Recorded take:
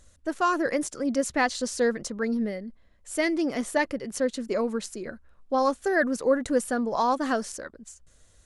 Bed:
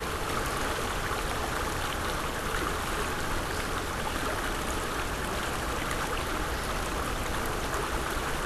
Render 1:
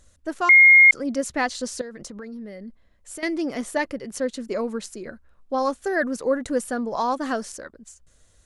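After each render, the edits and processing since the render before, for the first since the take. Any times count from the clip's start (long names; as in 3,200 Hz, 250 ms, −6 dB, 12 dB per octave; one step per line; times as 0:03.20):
0:00.49–0:00.91: beep over 2,140 Hz −8 dBFS
0:01.81–0:03.23: downward compressor 12 to 1, threshold −33 dBFS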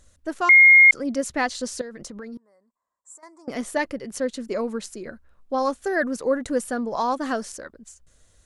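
0:02.37–0:03.48: pair of resonant band-passes 2,800 Hz, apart 2.9 octaves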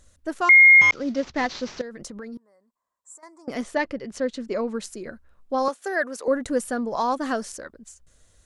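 0:00.81–0:01.82: variable-slope delta modulation 32 kbit/s
0:03.63–0:04.74: low-pass filter 5,600 Hz
0:05.68–0:06.28: high-pass filter 460 Hz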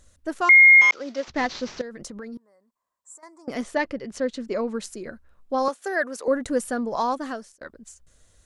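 0:00.59–0:01.28: high-pass filter 450 Hz
0:07.03–0:07.61: fade out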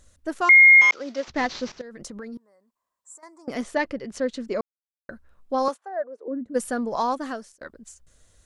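0:01.72–0:02.17: fade in equal-power, from −13 dB
0:04.61–0:05.09: silence
0:05.76–0:06.54: resonant band-pass 1,100 Hz → 190 Hz, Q 3.7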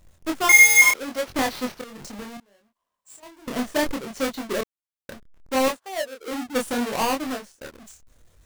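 each half-wave held at its own peak
chorus effect 0.7 Hz, depth 5.8 ms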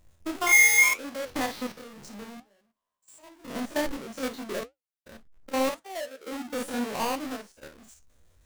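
spectrum averaged block by block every 50 ms
flanger 1.9 Hz, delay 7.7 ms, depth 6 ms, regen −67%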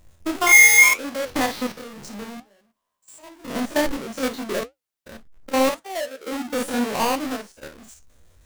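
level +7 dB
brickwall limiter −3 dBFS, peak gain reduction 1 dB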